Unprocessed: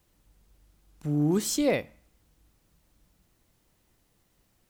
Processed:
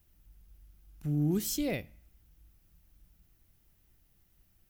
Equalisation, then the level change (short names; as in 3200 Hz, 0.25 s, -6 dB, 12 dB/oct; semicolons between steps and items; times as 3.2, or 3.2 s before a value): dynamic EQ 1200 Hz, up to -6 dB, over -47 dBFS, Q 1.1; graphic EQ 125/250/500/1000/2000/4000/8000 Hz -5/-8/-12/-11/-6/-8/-11 dB; +6.0 dB